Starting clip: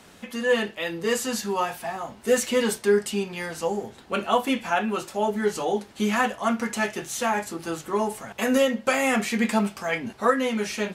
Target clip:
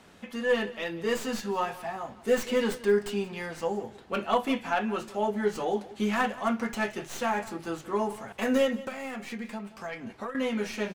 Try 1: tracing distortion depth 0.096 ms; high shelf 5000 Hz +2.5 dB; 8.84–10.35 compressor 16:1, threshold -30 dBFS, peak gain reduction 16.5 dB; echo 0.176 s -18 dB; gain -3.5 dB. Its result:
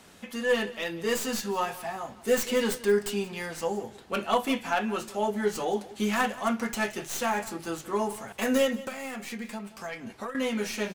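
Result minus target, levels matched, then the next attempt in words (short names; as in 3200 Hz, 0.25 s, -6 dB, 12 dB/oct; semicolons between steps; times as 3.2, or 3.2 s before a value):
8000 Hz band +6.5 dB
tracing distortion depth 0.096 ms; high shelf 5000 Hz -8 dB; 8.84–10.35 compressor 16:1, threshold -30 dBFS, peak gain reduction 16.5 dB; echo 0.176 s -18 dB; gain -3.5 dB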